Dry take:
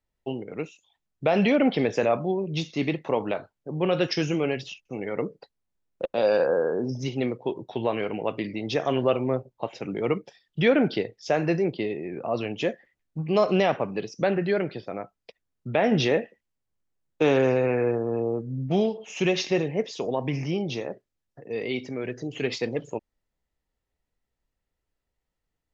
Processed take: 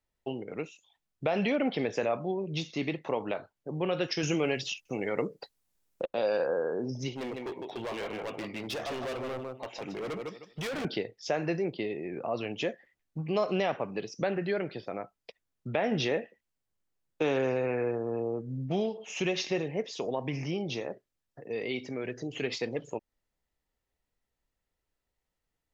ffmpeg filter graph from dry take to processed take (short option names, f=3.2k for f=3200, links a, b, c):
-filter_complex "[0:a]asettb=1/sr,asplit=3[a][b][c];[a]atrim=end=4.234[d];[b]atrim=start=4.23:end=6.03,asetpts=PTS-STARTPTS,afade=t=in:d=0.004:c=qsin,afade=t=out:st=1.796:d=0.004:c=qsin,aemphasis=mode=production:type=cd,acontrast=21[e];[c]atrim=start=6.026[f];[d][e]acrossfade=d=0.004:c1=hsin:c2=qsin[g];[g][f]acrossfade=d=0.004:c1=qsin:c2=hsin,asettb=1/sr,asplit=3[h][i][j];[h]atrim=end=7.134[k];[i]atrim=start=7.13:end=10.85,asetpts=PTS-STARTPTS,afade=t=in:d=0.004:c=qsin,afade=t=out:st=3.716:d=0.004:c=qsin,lowshelf=f=440:g=-5,aecho=1:1:154|308|462:0.398|0.0796|0.0159,atrim=end_sample=164052,volume=30.5dB,asoftclip=hard,volume=-30.5dB[l];[j]atrim=start=10.846[m];[k][l]acrossfade=d=0.004:c1=hsin:c2=qsin[n];[n][m]acrossfade=d=0.004:c1=qsin:c2=hsin,lowshelf=f=340:g=-3.5,acompressor=threshold=-35dB:ratio=1.5"